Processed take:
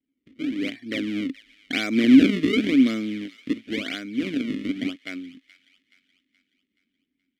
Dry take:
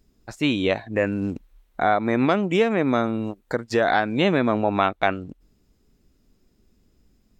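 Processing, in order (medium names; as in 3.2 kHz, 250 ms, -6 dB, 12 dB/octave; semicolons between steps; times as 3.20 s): Doppler pass-by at 2.05 s, 18 m/s, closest 7.5 m; bass shelf 460 Hz -6 dB; level rider gain up to 9 dB; in parallel at 0 dB: peak limiter -12 dBFS, peak gain reduction 9.5 dB; on the sum: decimation with a swept rate 32×, swing 160% 0.93 Hz; vowel filter i; on a send: feedback echo behind a high-pass 425 ms, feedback 47%, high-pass 1.9 kHz, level -16.5 dB; on the sum: trim +7 dB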